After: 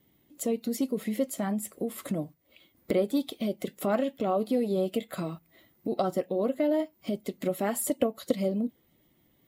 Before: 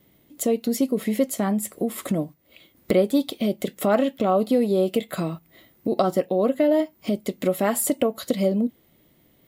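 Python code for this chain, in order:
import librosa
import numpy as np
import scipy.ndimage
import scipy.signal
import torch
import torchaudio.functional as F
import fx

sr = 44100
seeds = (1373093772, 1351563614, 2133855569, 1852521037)

y = fx.spec_quant(x, sr, step_db=15)
y = fx.transient(y, sr, attack_db=4, sustain_db=-2, at=(7.9, 8.32))
y = y * librosa.db_to_amplitude(-6.5)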